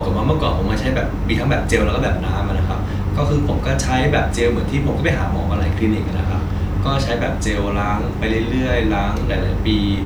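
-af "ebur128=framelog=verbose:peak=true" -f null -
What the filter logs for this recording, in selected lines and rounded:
Integrated loudness:
  I:         -19.0 LUFS
  Threshold: -29.0 LUFS
Loudness range:
  LRA:         1.3 LU
  Threshold: -39.0 LUFS
  LRA low:   -19.8 LUFS
  LRA high:  -18.4 LUFS
True peak:
  Peak:       -1.2 dBFS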